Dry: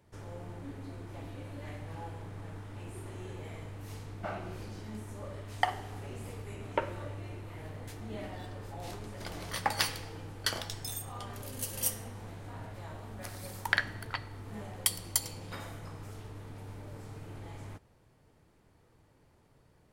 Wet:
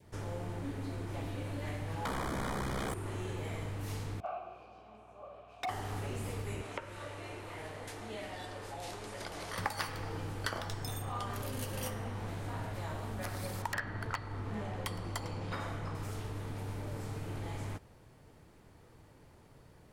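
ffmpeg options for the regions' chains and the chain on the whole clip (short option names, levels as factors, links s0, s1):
-filter_complex "[0:a]asettb=1/sr,asplit=3[s0][s1][s2];[s0]atrim=end=2.054[s3];[s1]atrim=start=2.05:end=2.94,asetpts=PTS-STARTPTS,afade=t=in:d=0.004:c=qsin,afade=t=out:st=0.886:d=0.004:c=qsin,aeval=exprs='val(0)*sin(2*PI*32*n/s)':c=same,aeval=exprs='0.0224*sin(PI/2*5.62*val(0)/0.0224)':c=same,asuperstop=centerf=2700:order=8:qfactor=7.1[s4];[s2]atrim=start=2.936[s5];[s3][s4]acrossfade=d=0.004:c1=hsin:c2=qsin[s6];[s6][s5]acrossfade=d=0.004:c1=qsin:c2=hsin,asettb=1/sr,asplit=3[s7][s8][s9];[s7]atrim=end=4.204[s10];[s8]atrim=start=4.2:end=5.69,asetpts=PTS-STARTPTS,afade=t=in:d=0.004:c=qsin,afade=t=out:st=1.486:d=0.004:c=qsin,asplit=3[s11][s12][s13];[s11]bandpass=f=730:t=q:w=8,volume=1[s14];[s12]bandpass=f=1090:t=q:w=8,volume=0.501[s15];[s13]bandpass=f=2440:t=q:w=8,volume=0.355[s16];[s14][s15][s16]amix=inputs=3:normalize=0,aeval=exprs='0.0224*(abs(mod(val(0)/0.0224+3,4)-2)-1)':c=same,aeval=exprs='val(0)+0.000282*(sin(2*PI*60*n/s)+sin(2*PI*2*60*n/s)/2+sin(2*PI*3*60*n/s)/3+sin(2*PI*4*60*n/s)/4+sin(2*PI*5*60*n/s)/5)':c=same[s17];[s9]atrim=start=5.686[s18];[s10][s17]acrossfade=d=0.004:c1=hsin:c2=qsin[s19];[s19][s18]acrossfade=d=0.004:c1=qsin:c2=hsin,asettb=1/sr,asplit=3[s20][s21][s22];[s20]atrim=end=6.614[s23];[s21]atrim=start=6.61:end=9.58,asetpts=PTS-STARTPTS,afade=t=in:d=0.004:c=qsin,afade=t=out:st=2.966:d=0.004:c=qsin,lowpass=f=12000:w=0.5412,lowpass=f=12000:w=1.3066,acrossover=split=360|1800[s24][s25][s26];[s24]acompressor=threshold=0.00141:ratio=4[s27];[s25]acompressor=threshold=0.00355:ratio=4[s28];[s26]acompressor=threshold=0.00282:ratio=4[s29];[s27][s28][s29]amix=inputs=3:normalize=0[s30];[s22]atrim=start=9.576[s31];[s23][s30]acrossfade=d=0.004:c1=hsin:c2=qsin[s32];[s32][s31]acrossfade=d=0.004:c1=qsin:c2=hsin,asettb=1/sr,asplit=3[s33][s34][s35];[s33]atrim=end=13.624[s36];[s34]atrim=start=13.62:end=15.95,asetpts=PTS-STARTPTS,afade=t=in:d=0.004:c=qsin,afade=t=out:st=2.326:d=0.004:c=qsin,aemphasis=mode=reproduction:type=50fm,aeval=exprs='0.0708*(abs(mod(val(0)/0.0708+3,4)-2)-1)':c=same[s37];[s35]atrim=start=15.946[s38];[s36][s37]acrossfade=d=0.004:c1=hsin:c2=qsin[s39];[s39][s38]acrossfade=d=0.004:c1=qsin:c2=hsin,adynamicequalizer=threshold=0.00316:dfrequency=1200:dqfactor=1.8:tfrequency=1200:tqfactor=1.8:attack=5:release=100:ratio=0.375:range=2:mode=boostabove:tftype=bell,acrossover=split=2100|4400[s40][s41][s42];[s40]acompressor=threshold=0.00891:ratio=4[s43];[s41]acompressor=threshold=0.00126:ratio=4[s44];[s42]acompressor=threshold=0.00178:ratio=4[s45];[s43][s44][s45]amix=inputs=3:normalize=0,volume=2"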